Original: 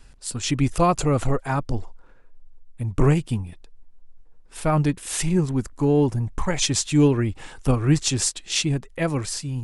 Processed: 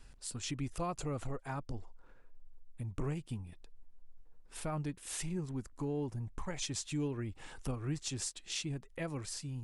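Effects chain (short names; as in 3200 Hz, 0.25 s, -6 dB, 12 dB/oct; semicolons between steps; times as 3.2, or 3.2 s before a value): compressor 2:1, threshold -36 dBFS, peak gain reduction 13 dB; gain -7 dB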